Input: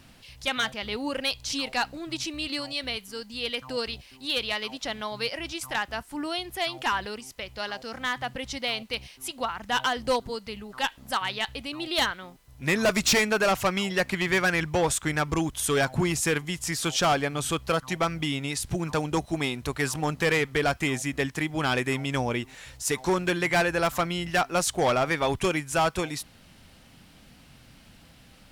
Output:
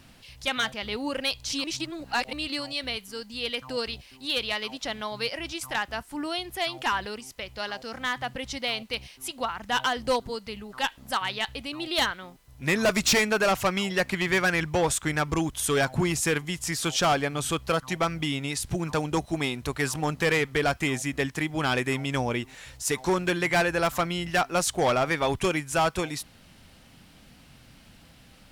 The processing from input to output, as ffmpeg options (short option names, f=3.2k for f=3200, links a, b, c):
-filter_complex "[0:a]asplit=3[a][b][c];[a]atrim=end=1.642[d];[b]atrim=start=1.638:end=2.332,asetpts=PTS-STARTPTS,areverse[e];[c]atrim=start=2.328[f];[d][e]acrossfade=d=0.004:c1=hsin:c2=hsin[g];[g][f]acrossfade=d=0.004:c1=hsin:c2=hsin"